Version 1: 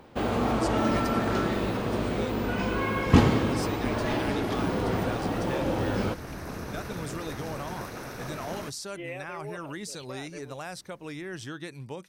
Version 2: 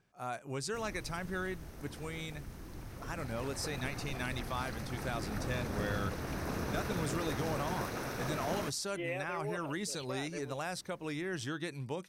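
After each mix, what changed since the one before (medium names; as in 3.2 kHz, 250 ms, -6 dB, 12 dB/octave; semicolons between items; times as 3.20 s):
first sound: muted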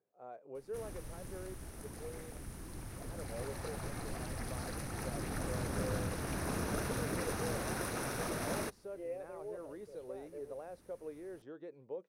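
speech: add band-pass filter 490 Hz, Q 3.6; background: add peaking EQ 9.7 kHz +13 dB 0.36 oct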